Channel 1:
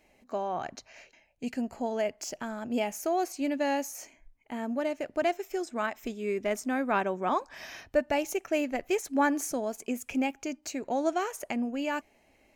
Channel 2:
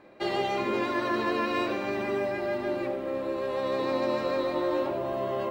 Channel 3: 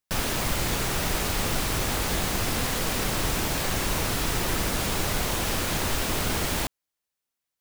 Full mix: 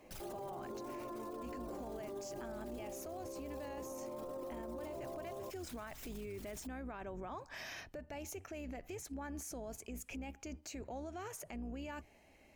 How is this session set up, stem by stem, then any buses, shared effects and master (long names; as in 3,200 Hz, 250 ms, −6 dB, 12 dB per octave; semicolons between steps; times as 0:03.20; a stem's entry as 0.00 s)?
−1.0 dB, 0.00 s, no send, sub-octave generator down 2 octaves, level −2 dB; downward compressor 12 to 1, threshold −31 dBFS, peak gain reduction 13 dB
−6.5 dB, 0.00 s, no send, inverse Chebyshev low-pass filter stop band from 3,700 Hz, stop band 60 dB
+1.5 dB, 0.00 s, no send, spectral envelope exaggerated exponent 2; first-order pre-emphasis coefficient 0.9; automatic ducking −11 dB, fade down 0.35 s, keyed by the first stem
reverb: not used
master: brickwall limiter −37.5 dBFS, peak gain reduction 15 dB